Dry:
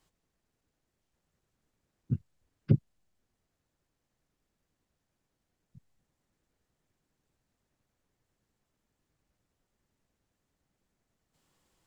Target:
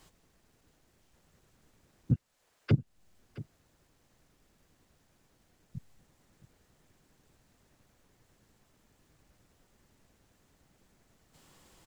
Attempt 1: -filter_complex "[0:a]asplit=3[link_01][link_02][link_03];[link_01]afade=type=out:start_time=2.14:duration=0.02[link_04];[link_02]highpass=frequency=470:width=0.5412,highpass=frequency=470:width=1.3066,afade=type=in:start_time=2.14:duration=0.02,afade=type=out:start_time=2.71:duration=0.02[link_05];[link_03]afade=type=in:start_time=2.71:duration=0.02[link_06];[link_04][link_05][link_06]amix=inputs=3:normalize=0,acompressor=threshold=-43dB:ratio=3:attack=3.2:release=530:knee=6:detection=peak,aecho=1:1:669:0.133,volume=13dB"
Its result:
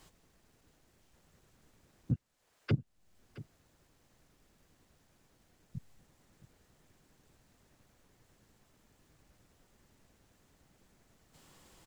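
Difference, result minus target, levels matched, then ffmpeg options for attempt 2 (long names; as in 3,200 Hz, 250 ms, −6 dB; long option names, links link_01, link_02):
downward compressor: peak gain reduction +5 dB
-filter_complex "[0:a]asplit=3[link_01][link_02][link_03];[link_01]afade=type=out:start_time=2.14:duration=0.02[link_04];[link_02]highpass=frequency=470:width=0.5412,highpass=frequency=470:width=1.3066,afade=type=in:start_time=2.14:duration=0.02,afade=type=out:start_time=2.71:duration=0.02[link_05];[link_03]afade=type=in:start_time=2.71:duration=0.02[link_06];[link_04][link_05][link_06]amix=inputs=3:normalize=0,acompressor=threshold=-35.5dB:ratio=3:attack=3.2:release=530:knee=6:detection=peak,aecho=1:1:669:0.133,volume=13dB"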